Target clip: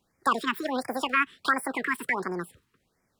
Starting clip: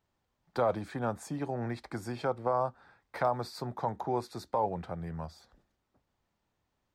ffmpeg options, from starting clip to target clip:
-af "asetrate=95697,aresample=44100,afftfilt=real='re*(1-between(b*sr/1024,590*pow(3500/590,0.5+0.5*sin(2*PI*1.4*pts/sr))/1.41,590*pow(3500/590,0.5+0.5*sin(2*PI*1.4*pts/sr))*1.41))':imag='im*(1-between(b*sr/1024,590*pow(3500/590,0.5+0.5*sin(2*PI*1.4*pts/sr))/1.41,590*pow(3500/590,0.5+0.5*sin(2*PI*1.4*pts/sr))*1.41))':win_size=1024:overlap=0.75,volume=2.24"

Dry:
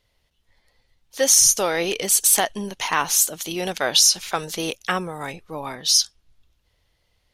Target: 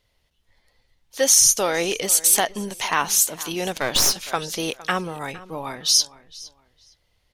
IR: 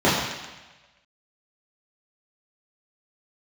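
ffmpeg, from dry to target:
-filter_complex "[0:a]asplit=2[s0][s1];[s1]adelay=461,lowpass=f=4300:p=1,volume=0.126,asplit=2[s2][s3];[s3]adelay=461,lowpass=f=4300:p=1,volume=0.25[s4];[s0][s2][s4]amix=inputs=3:normalize=0,asettb=1/sr,asplit=3[s5][s6][s7];[s5]atrim=end=3.754[s8];[s6]atrim=start=3.75:end=4.27,asetpts=PTS-STARTPTS,afade=t=in:d=0.004:c=qsin,afade=t=out:st=0.516:d=0.004:c=qsin,aeval=exprs='clip(val(0),-1,0.0501)':c=same[s9];[s7]atrim=start=4.266[s10];[s8][s9]acrossfade=d=0.004:c1=hsin:c2=qsin[s11];[s11][s10]acrossfade=d=0.004:c1=qsin:c2=hsin"

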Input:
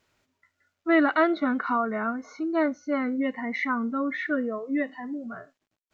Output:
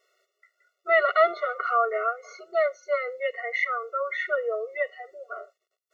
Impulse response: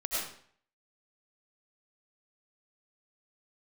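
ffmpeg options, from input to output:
-filter_complex "[0:a]asettb=1/sr,asplit=3[s0][s1][s2];[s0]atrim=end=1.164[s3];[s1]atrim=start=1.16:end=1.74,asetpts=PTS-STARTPTS,afade=t=in:d=0.004:c=qsin,afade=t=out:st=0.576:d=0.004:c=qsin,aeval=exprs='val(0)+0.00501*sin(2*PI*1200*n/s)':c=same[s4];[s2]atrim=start=1.736[s5];[s3][s4]acrossfade=d=0.004:c1=hsin:c2=qsin[s6];[s6][s5]acrossfade=d=0.004:c1=qsin:c2=hsin,bandreject=f=50:t=h:w=6,bandreject=f=100:t=h:w=6,bandreject=f=150:t=h:w=6,bandreject=f=200:t=h:w=6,bandreject=f=250:t=h:w=6,afftfilt=real='re*eq(mod(floor(b*sr/1024/370),2),1)':imag='im*eq(mod(floor(b*sr/1024/370),2),1)':win_size=1024:overlap=0.75,volume=1.68"

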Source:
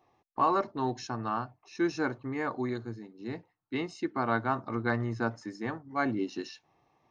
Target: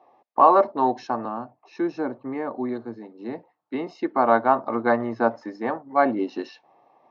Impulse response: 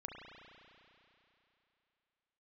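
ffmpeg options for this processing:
-filter_complex "[0:a]equalizer=f=770:w=0.56:g=14.5,asettb=1/sr,asplit=3[s0][s1][s2];[s0]atrim=end=1.254[s3];[s1]atrim=start=1.25:end=3.87,asetpts=PTS-STARTPTS,afade=t=in:d=0.004:c=qsin,afade=t=out:st=2.616:d=0.004:c=qsin,acrossover=split=360[s4][s5];[s5]acompressor=threshold=0.0126:ratio=2[s6];[s4][s6]amix=inputs=2:normalize=0[s7];[s2]atrim=start=3.866[s8];[s3][s7]acrossfade=d=0.004:c1=hsin:c2=qsin[s9];[s9][s8]acrossfade=d=0.004:c1=qsin:c2=hsin,highpass=170,equalizer=f=240:t=q:w=4:g=5,equalizer=f=560:t=q:w=4:g=5,equalizer=f=1400:t=q:w=4:g=-3,lowpass=f=5300:w=0.5412,lowpass=f=5300:w=1.3066,volume=0.841"

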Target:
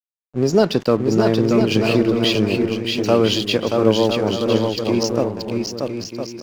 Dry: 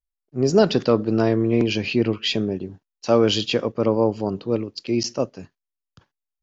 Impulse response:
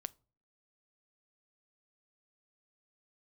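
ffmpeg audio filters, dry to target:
-filter_complex "[0:a]asplit=2[s0][s1];[s1]acompressor=threshold=0.0501:ratio=6,volume=1.41[s2];[s0][s2]amix=inputs=2:normalize=0,aeval=exprs='sgn(val(0))*max(abs(val(0))-0.0178,0)':c=same,aecho=1:1:630|1008|1235|1371|1453:0.631|0.398|0.251|0.158|0.1,volume=0.891"

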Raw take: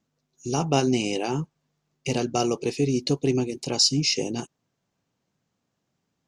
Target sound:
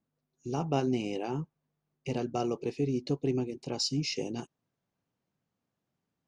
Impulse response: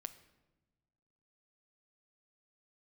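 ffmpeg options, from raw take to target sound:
-af "asetnsamples=n=441:p=0,asendcmd='3.8 lowpass f 3300',lowpass=f=1700:p=1,volume=0.473"

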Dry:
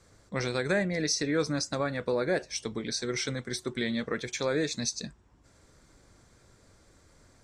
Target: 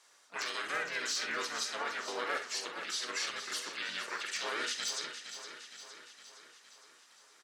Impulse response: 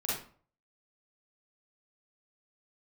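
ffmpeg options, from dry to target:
-filter_complex "[0:a]highpass=1200,bandreject=f=4400:w=23,alimiter=level_in=1.58:limit=0.0631:level=0:latency=1:release=20,volume=0.631,asplit=4[s0][s1][s2][s3];[s1]asetrate=22050,aresample=44100,atempo=2,volume=0.158[s4];[s2]asetrate=35002,aresample=44100,atempo=1.25992,volume=1[s5];[s3]asetrate=55563,aresample=44100,atempo=0.793701,volume=0.562[s6];[s0][s4][s5][s6]amix=inputs=4:normalize=0,aeval=exprs='0.0596*(abs(mod(val(0)/0.0596+3,4)-2)-1)':c=same,aecho=1:1:463|926|1389|1852|2315|2778|3241:0.316|0.183|0.106|0.0617|0.0358|0.0208|0.012,asplit=2[s7][s8];[1:a]atrim=start_sample=2205,atrim=end_sample=3087[s9];[s8][s9]afir=irnorm=-1:irlink=0,volume=0.398[s10];[s7][s10]amix=inputs=2:normalize=0,volume=0.631"

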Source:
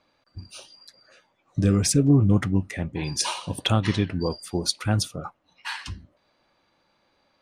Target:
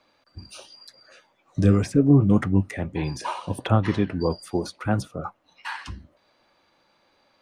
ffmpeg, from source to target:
-filter_complex "[0:a]acrossover=split=260|1800[s0][s1][s2];[s0]flanger=delay=7.7:depth=8:regen=46:speed=1.1:shape=triangular[s3];[s2]acompressor=threshold=0.00562:ratio=6[s4];[s3][s1][s4]amix=inputs=3:normalize=0,volume=1.5"

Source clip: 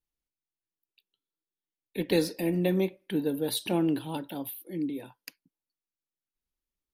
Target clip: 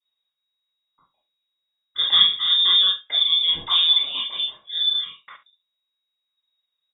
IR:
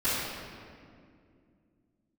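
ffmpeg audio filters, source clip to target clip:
-filter_complex "[0:a]aecho=1:1:47|70:0.2|0.141[s0];[1:a]atrim=start_sample=2205,atrim=end_sample=3528[s1];[s0][s1]afir=irnorm=-1:irlink=0,lowpass=f=3200:t=q:w=0.5098,lowpass=f=3200:t=q:w=0.6013,lowpass=f=3200:t=q:w=0.9,lowpass=f=3200:t=q:w=2.563,afreqshift=-3800"

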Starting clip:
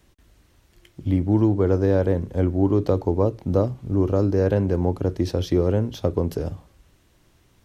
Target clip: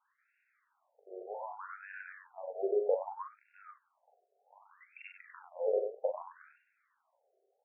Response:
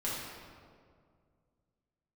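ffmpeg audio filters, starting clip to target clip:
-filter_complex "[0:a]asettb=1/sr,asplit=3[s0][s1][s2];[s0]atrim=end=3.694[s3];[s1]atrim=start=3.69:end=5.08,asetpts=PTS-STARTPTS,afade=t=in:d=0.004:c=qsin,afade=t=out:st=1.386:d=0.004:c=qsin,lowpass=f=3100:t=q:w=0.5098,lowpass=f=3100:t=q:w=0.6013,lowpass=f=3100:t=q:w=0.9,lowpass=f=3100:t=q:w=2.563,afreqshift=-3600[s4];[s2]atrim=start=5.076[s5];[s3][s4]acrossfade=d=0.004:c1=hsin:c2=qsin[s6];[s6][s5]acrossfade=d=0.004:c1=qsin:c2=hsin,aecho=1:1:40.82|96.21:0.562|0.562,afftfilt=real='re*between(b*sr/1024,520*pow(2000/520,0.5+0.5*sin(2*PI*0.64*pts/sr))/1.41,520*pow(2000/520,0.5+0.5*sin(2*PI*0.64*pts/sr))*1.41)':imag='im*between(b*sr/1024,520*pow(2000/520,0.5+0.5*sin(2*PI*0.64*pts/sr))/1.41,520*pow(2000/520,0.5+0.5*sin(2*PI*0.64*pts/sr))*1.41)':win_size=1024:overlap=0.75,volume=0.447"

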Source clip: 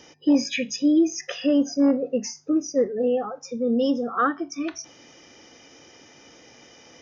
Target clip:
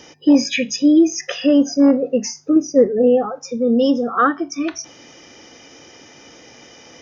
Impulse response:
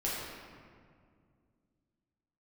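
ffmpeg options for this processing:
-filter_complex "[0:a]asettb=1/sr,asplit=3[s0][s1][s2];[s0]atrim=end=2.564[s3];[s1]atrim=start=2.56:end=3.26,asetpts=PTS-STARTPTS,afade=t=in:d=0.004:c=qsin,afade=t=out:st=0.696:d=0.004:c=qsin,tiltshelf=f=890:g=4[s4];[s2]atrim=start=3.256[s5];[s3][s4]acrossfade=d=0.004:c1=hsin:c2=qsin[s6];[s6][s5]acrossfade=d=0.004:c1=qsin:c2=hsin,volume=2.11"

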